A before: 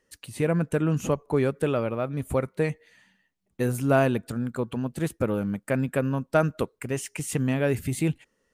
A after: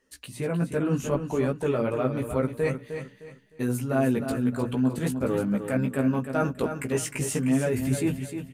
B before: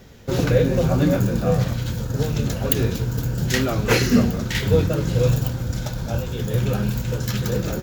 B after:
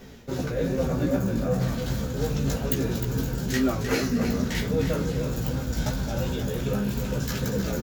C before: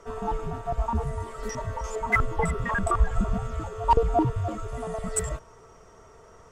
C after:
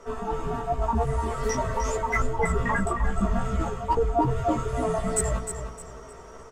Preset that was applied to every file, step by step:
flange 1.2 Hz, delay 4.3 ms, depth 1.1 ms, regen -66%; dynamic EQ 3100 Hz, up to -4 dB, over -44 dBFS, Q 1.3; chorus 2.5 Hz, delay 15 ms, depth 2.2 ms; reverse; compressor 4:1, threshold -35 dBFS; reverse; bell 260 Hz +5.5 dB 0.21 oct; AGC gain up to 3.5 dB; notches 60/120/180/240 Hz; on a send: feedback echo 0.307 s, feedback 30%, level -8.5 dB; on the sum: match loudness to -27 LUFS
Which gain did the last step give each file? +8.0, +8.0, +10.0 dB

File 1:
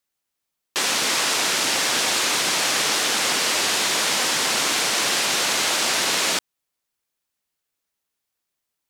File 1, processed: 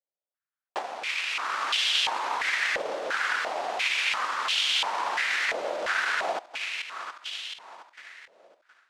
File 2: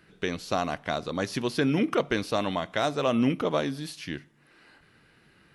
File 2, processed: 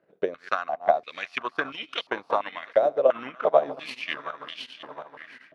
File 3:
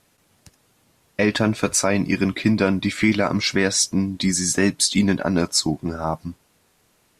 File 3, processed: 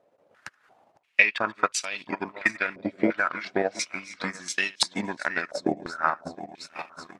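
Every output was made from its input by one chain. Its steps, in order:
regenerating reverse delay 0.359 s, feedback 60%, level -10.5 dB; transient shaper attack +11 dB, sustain -10 dB; AGC gain up to 12 dB; stepped band-pass 2.9 Hz 570–3100 Hz; match loudness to -27 LUFS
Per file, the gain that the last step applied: -2.0, +4.5, +8.0 dB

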